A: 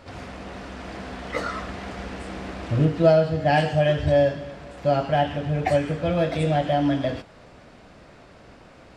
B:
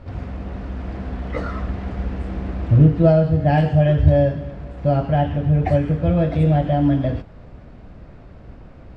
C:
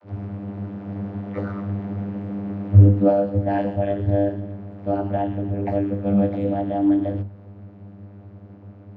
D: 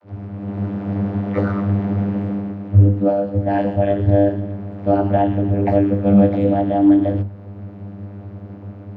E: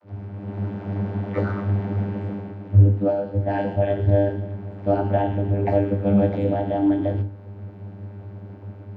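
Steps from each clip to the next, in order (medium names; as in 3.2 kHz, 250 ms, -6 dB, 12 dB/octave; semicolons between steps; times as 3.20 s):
RIAA curve playback; trim -1.5 dB
vocoder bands 32, saw 99.9 Hz; trim -1.5 dB
level rider gain up to 9.5 dB; trim -1 dB
reverberation RT60 0.40 s, pre-delay 17 ms, DRR 9 dB; trim -3.5 dB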